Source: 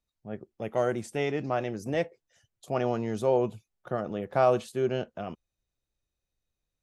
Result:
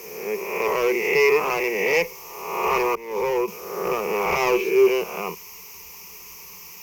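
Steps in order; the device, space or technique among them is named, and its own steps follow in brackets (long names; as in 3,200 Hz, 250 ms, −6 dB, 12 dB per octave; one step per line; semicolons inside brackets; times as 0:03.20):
peak hold with a rise ahead of every peak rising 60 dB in 1.02 s
drive-through speaker (band-pass filter 400–3,100 Hz; parametric band 2,200 Hz +8 dB 0.49 octaves; hard clipping −26 dBFS, distortion −7 dB; white noise bed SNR 19 dB)
0:02.95–0:03.48: downward expander −25 dBFS
EQ curve with evenly spaced ripples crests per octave 0.79, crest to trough 18 dB
level +7.5 dB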